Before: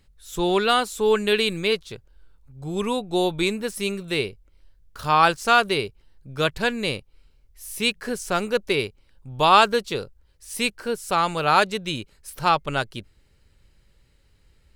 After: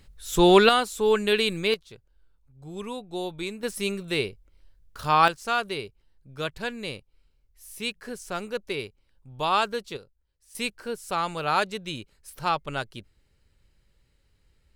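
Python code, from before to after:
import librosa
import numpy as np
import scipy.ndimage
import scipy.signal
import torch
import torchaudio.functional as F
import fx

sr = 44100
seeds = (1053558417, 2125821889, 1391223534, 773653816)

y = fx.gain(x, sr, db=fx.steps((0.0, 5.5), (0.69, -2.0), (1.74, -10.0), (3.63, -2.0), (5.28, -8.5), (9.97, -16.5), (10.55, -6.0)))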